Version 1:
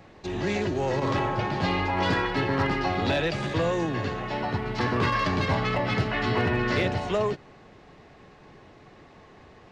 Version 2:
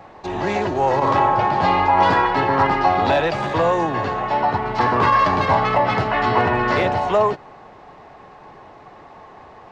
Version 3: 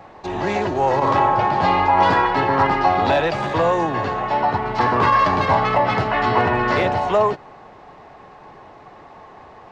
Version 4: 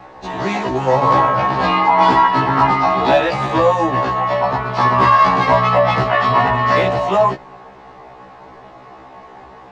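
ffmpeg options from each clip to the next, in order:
-af "equalizer=f=880:w=0.93:g=13.5,volume=1dB"
-af anull
-af "afftfilt=real='re*1.73*eq(mod(b,3),0)':imag='im*1.73*eq(mod(b,3),0)':win_size=2048:overlap=0.75,volume=6dB"

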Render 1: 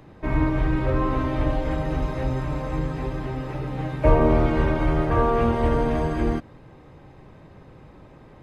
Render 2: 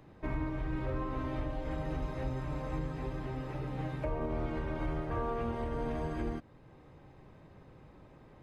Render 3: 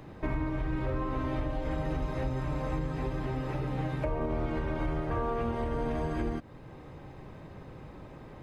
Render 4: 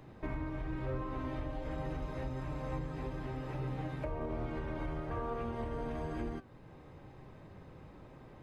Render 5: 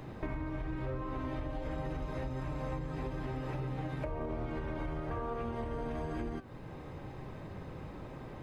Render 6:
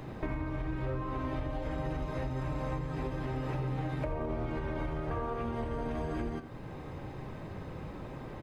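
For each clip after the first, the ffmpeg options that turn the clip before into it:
-af "alimiter=limit=-17dB:level=0:latency=1:release=498,volume=-8.5dB"
-af "acompressor=threshold=-41dB:ratio=2,volume=9dB"
-af "flanger=delay=7.6:depth=4.5:regen=82:speed=1.1:shape=sinusoidal,volume=-2dB"
-af "acompressor=threshold=-43dB:ratio=4,volume=8dB"
-af "aecho=1:1:85:0.224,volume=2.5dB"

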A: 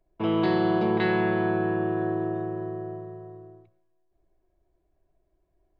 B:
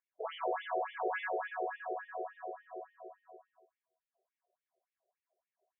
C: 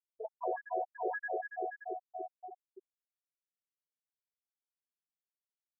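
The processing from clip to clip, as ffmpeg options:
-af "afftfilt=real='re*between(b*sr/1024,530*pow(2600/530,0.5+0.5*sin(2*PI*3.5*pts/sr))/1.41,530*pow(2600/530,0.5+0.5*sin(2*PI*3.5*pts/sr))*1.41)':imag='im*between(b*sr/1024,530*pow(2600/530,0.5+0.5*sin(2*PI*3.5*pts/sr))/1.41,530*pow(2600/530,0.5+0.5*sin(2*PI*3.5*pts/sr))*1.41)':win_size=1024:overlap=0.75,volume=-2.5dB"
-af "aeval=exprs='val(0)+0.5*0.00299*sgn(val(0))':c=same,afftfilt=real='re*gte(hypot(re,im),0.0794)':imag='im*gte(hypot(re,im),0.0794)':win_size=1024:overlap=0.75"

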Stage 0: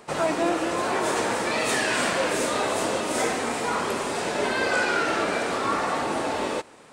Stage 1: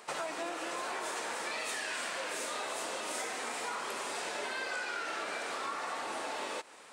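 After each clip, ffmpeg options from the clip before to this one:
-af "highpass=f=1k:p=1,acompressor=threshold=-35dB:ratio=6"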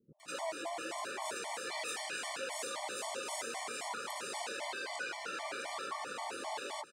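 -filter_complex "[0:a]acrossover=split=250|1500[a][b][c];[c]adelay=200[d];[b]adelay=230[e];[a][e][d]amix=inputs=3:normalize=0,afftfilt=real='re*gt(sin(2*PI*3.8*pts/sr)*(1-2*mod(floor(b*sr/1024/590),2)),0)':imag='im*gt(sin(2*PI*3.8*pts/sr)*(1-2*mod(floor(b*sr/1024/590),2)),0)':win_size=1024:overlap=0.75,volume=1.5dB"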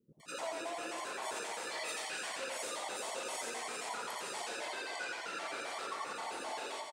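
-af "aecho=1:1:86|172|258|344|430:0.668|0.234|0.0819|0.0287|0.01,volume=-2dB"

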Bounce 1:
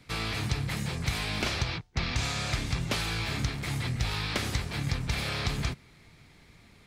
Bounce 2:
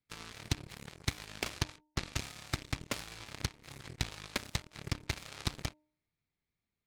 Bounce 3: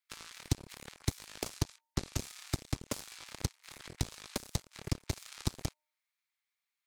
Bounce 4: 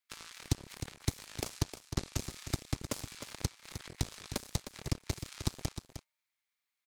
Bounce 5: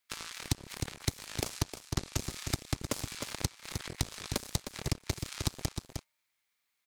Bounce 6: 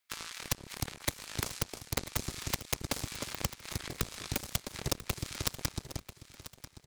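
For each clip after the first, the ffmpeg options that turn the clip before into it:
-af "aeval=exprs='0.15*(cos(1*acos(clip(val(0)/0.15,-1,1)))-cos(1*PI/2))+0.0211*(cos(2*acos(clip(val(0)/0.15,-1,1)))-cos(2*PI/2))+0.0531*(cos(3*acos(clip(val(0)/0.15,-1,1)))-cos(3*PI/2))+0.00596*(cos(4*acos(clip(val(0)/0.15,-1,1)))-cos(4*PI/2))+0.00133*(cos(5*acos(clip(val(0)/0.15,-1,1)))-cos(5*PI/2))':c=same,bandreject=f=304.5:t=h:w=4,bandreject=f=609:t=h:w=4,bandreject=f=913.5:t=h:w=4,volume=1dB"
-filter_complex "[0:a]acrossover=split=890|5100[a][b][c];[a]aeval=exprs='sgn(val(0))*max(abs(val(0))-0.00501,0)':c=same[d];[b]acompressor=threshold=-51dB:ratio=6[e];[d][e][c]amix=inputs=3:normalize=0,volume=3.5dB"
-af "aecho=1:1:308:0.316"
-af "acompressor=threshold=-35dB:ratio=3,volume=6.5dB"
-af "aeval=exprs='(mod(8.41*val(0)+1,2)-1)/8.41':c=same,aecho=1:1:991|1982|2973:0.188|0.064|0.0218"

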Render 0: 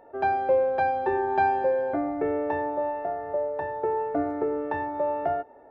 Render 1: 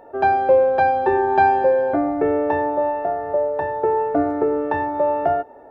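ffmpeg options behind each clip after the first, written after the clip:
-af "equalizer=f=2.1k:t=o:w=0.24:g=-4.5,volume=7.5dB"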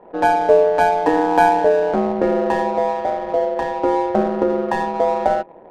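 -af "adynamicsmooth=sensitivity=4.5:basefreq=1k,aeval=exprs='val(0)*sin(2*PI*84*n/s)':c=same,volume=4.5dB"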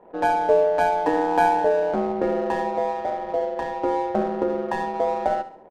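-af "aecho=1:1:69|138|207|276:0.211|0.0845|0.0338|0.0135,volume=-5.5dB"

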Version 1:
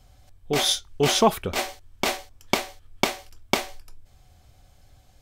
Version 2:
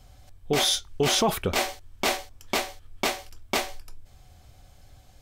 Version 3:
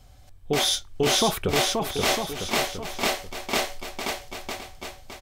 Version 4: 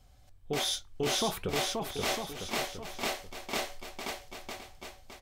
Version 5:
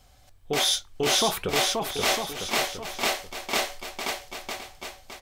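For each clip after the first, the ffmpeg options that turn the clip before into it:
-af "alimiter=limit=-16.5dB:level=0:latency=1:release=15,volume=2.5dB"
-af "aecho=1:1:530|954|1293|1565|1782:0.631|0.398|0.251|0.158|0.1"
-af "acontrast=31,flanger=delay=3.7:depth=5.6:regen=-83:speed=1.2:shape=sinusoidal,volume=-9dB"
-af "lowshelf=f=360:g=-7.5,volume=8.5dB"

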